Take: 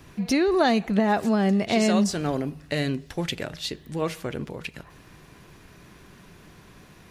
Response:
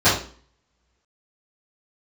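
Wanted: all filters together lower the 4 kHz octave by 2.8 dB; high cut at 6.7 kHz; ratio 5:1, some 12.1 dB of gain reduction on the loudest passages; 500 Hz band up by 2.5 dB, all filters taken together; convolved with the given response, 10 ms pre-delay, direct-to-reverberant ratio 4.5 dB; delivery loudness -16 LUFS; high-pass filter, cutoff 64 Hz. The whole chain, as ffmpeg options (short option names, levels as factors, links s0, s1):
-filter_complex "[0:a]highpass=64,lowpass=6700,equalizer=f=500:t=o:g=3.5,equalizer=f=4000:t=o:g=-3,acompressor=threshold=0.0355:ratio=5,asplit=2[s0][s1];[1:a]atrim=start_sample=2205,adelay=10[s2];[s1][s2]afir=irnorm=-1:irlink=0,volume=0.0473[s3];[s0][s3]amix=inputs=2:normalize=0,volume=5.62"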